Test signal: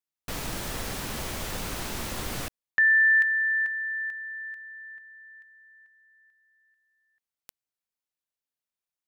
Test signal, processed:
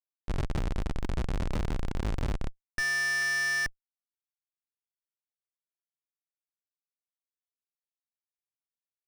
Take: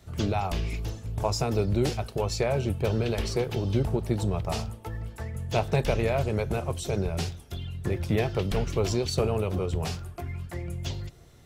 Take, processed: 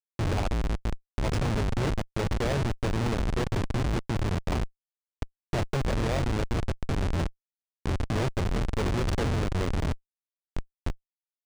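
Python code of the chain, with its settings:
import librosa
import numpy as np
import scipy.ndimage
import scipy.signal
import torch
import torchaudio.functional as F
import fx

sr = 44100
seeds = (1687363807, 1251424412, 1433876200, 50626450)

p1 = 10.0 ** (-24.5 / 20.0) * np.tanh(x / 10.0 ** (-24.5 / 20.0))
p2 = x + F.gain(torch.from_numpy(p1), -4.0).numpy()
p3 = fx.hum_notches(p2, sr, base_hz=50, count=4)
p4 = fx.schmitt(p3, sr, flips_db=-22.0)
y = np.interp(np.arange(len(p4)), np.arange(len(p4))[::3], p4[::3])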